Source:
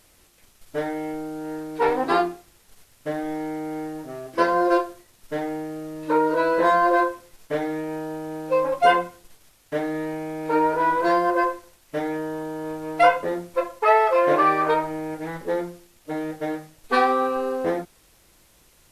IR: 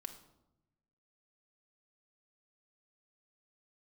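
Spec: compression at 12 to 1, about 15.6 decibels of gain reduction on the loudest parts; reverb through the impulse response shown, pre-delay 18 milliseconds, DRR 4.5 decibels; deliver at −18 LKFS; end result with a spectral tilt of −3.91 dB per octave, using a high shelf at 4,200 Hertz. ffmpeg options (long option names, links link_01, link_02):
-filter_complex "[0:a]highshelf=frequency=4200:gain=7,acompressor=threshold=-27dB:ratio=12,asplit=2[link_01][link_02];[1:a]atrim=start_sample=2205,adelay=18[link_03];[link_02][link_03]afir=irnorm=-1:irlink=0,volume=-0.5dB[link_04];[link_01][link_04]amix=inputs=2:normalize=0,volume=14dB"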